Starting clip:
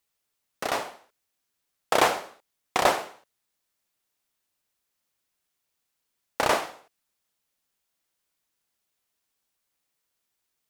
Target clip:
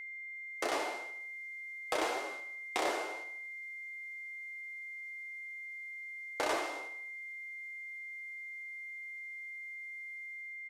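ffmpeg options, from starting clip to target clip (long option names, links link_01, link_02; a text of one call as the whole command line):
ffmpeg -i in.wav -af "lowshelf=frequency=220:width_type=q:width=3:gain=-12.5,acompressor=threshold=-32dB:ratio=16,flanger=delay=6.9:depth=5.9:regen=57:speed=0.89:shape=triangular,dynaudnorm=framelen=260:gausssize=5:maxgain=7.5dB,asoftclip=type=tanh:threshold=-28.5dB,lowpass=11000,bass=frequency=250:gain=-5,treble=frequency=4000:gain=2,aecho=1:1:76|152|228|304|380:0.224|0.112|0.056|0.028|0.014,aeval=exprs='val(0)+0.00562*sin(2*PI*2100*n/s)':channel_layout=same,volume=3dB" out.wav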